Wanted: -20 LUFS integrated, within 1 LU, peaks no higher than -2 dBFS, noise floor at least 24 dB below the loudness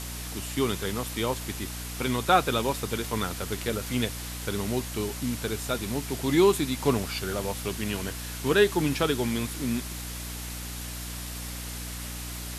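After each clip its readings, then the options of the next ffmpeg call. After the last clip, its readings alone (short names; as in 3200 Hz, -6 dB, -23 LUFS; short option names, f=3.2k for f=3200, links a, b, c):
hum 60 Hz; harmonics up to 300 Hz; hum level -36 dBFS; noise floor -37 dBFS; noise floor target -53 dBFS; loudness -28.5 LUFS; peak -6.5 dBFS; loudness target -20.0 LUFS
-> -af "bandreject=f=60:t=h:w=4,bandreject=f=120:t=h:w=4,bandreject=f=180:t=h:w=4,bandreject=f=240:t=h:w=4,bandreject=f=300:t=h:w=4"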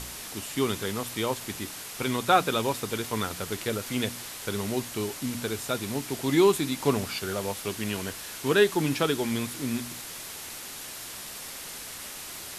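hum none; noise floor -40 dBFS; noise floor target -53 dBFS
-> -af "afftdn=nr=13:nf=-40"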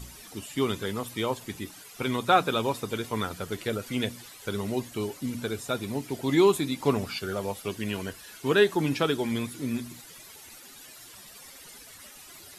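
noise floor -48 dBFS; noise floor target -53 dBFS
-> -af "afftdn=nr=6:nf=-48"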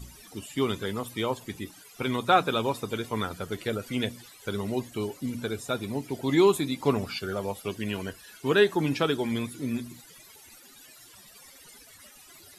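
noise floor -52 dBFS; noise floor target -53 dBFS
-> -af "afftdn=nr=6:nf=-52"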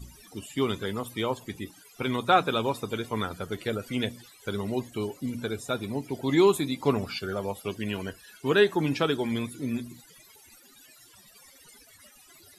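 noise floor -55 dBFS; loudness -28.5 LUFS; peak -6.5 dBFS; loudness target -20.0 LUFS
-> -af "volume=8.5dB,alimiter=limit=-2dB:level=0:latency=1"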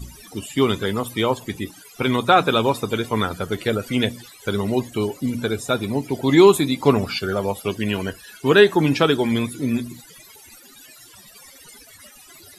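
loudness -20.5 LUFS; peak -2.0 dBFS; noise floor -47 dBFS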